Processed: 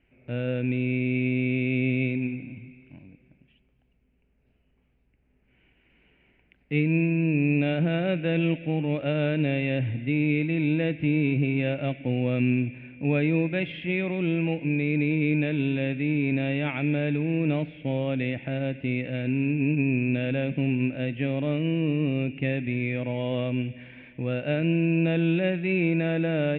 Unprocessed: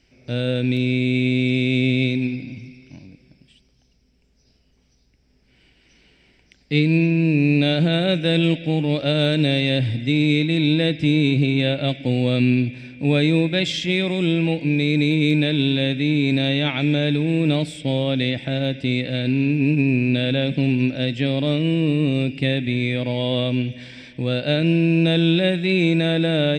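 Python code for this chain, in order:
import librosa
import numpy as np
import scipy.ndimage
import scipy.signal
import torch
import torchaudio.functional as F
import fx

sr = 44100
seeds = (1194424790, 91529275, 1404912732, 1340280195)

y = scipy.signal.sosfilt(scipy.signal.ellip(4, 1.0, 70, 2700.0, 'lowpass', fs=sr, output='sos'), x)
y = F.gain(torch.from_numpy(y), -5.0).numpy()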